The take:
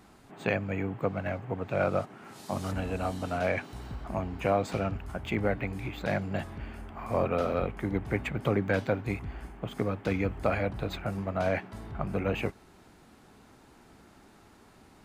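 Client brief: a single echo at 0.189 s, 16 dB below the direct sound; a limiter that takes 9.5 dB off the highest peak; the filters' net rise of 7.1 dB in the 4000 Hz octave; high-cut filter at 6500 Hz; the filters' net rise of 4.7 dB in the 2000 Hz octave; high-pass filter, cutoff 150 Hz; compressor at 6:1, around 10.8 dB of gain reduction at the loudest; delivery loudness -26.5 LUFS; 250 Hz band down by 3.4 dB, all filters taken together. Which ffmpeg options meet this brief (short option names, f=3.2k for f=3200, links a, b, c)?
-af "highpass=150,lowpass=6.5k,equalizer=f=250:t=o:g=-3.5,equalizer=f=2k:t=o:g=4,equalizer=f=4k:t=o:g=8,acompressor=threshold=-34dB:ratio=6,alimiter=level_in=4.5dB:limit=-24dB:level=0:latency=1,volume=-4.5dB,aecho=1:1:189:0.158,volume=14.5dB"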